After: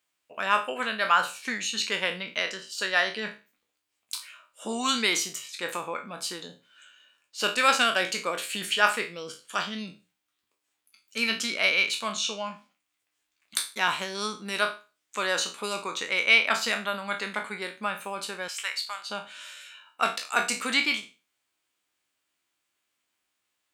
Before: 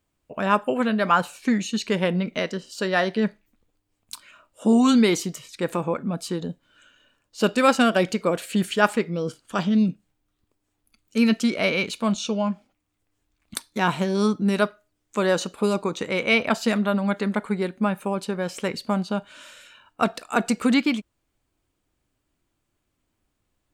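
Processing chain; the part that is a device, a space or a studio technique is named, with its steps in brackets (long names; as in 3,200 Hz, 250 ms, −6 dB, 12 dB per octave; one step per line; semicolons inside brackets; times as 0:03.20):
peak hold with a decay on every bin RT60 0.32 s
filter by subtraction (in parallel: low-pass filter 2,400 Hz 12 dB per octave + polarity inversion)
0:18.48–0:19.10: on the sum: high-pass filter 1,200 Hz 12 dB per octave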